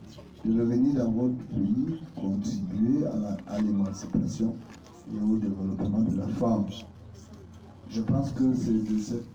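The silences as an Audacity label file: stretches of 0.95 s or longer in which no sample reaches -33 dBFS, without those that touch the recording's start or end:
6.800000	7.920000	silence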